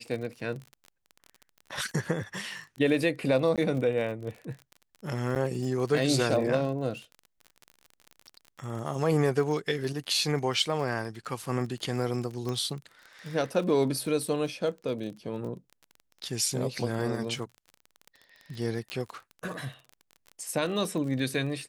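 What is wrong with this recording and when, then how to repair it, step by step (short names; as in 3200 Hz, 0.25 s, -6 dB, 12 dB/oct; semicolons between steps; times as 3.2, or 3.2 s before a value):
crackle 36/s -36 dBFS
3.56–3.58 gap 17 ms
5.35–5.36 gap 8 ms
12.49 pop -21 dBFS
18.9 pop -20 dBFS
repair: de-click; interpolate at 3.56, 17 ms; interpolate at 5.35, 8 ms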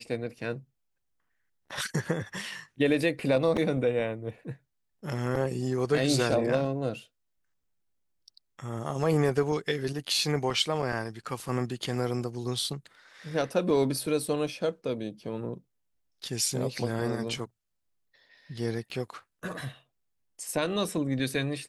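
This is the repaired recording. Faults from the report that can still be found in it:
18.9 pop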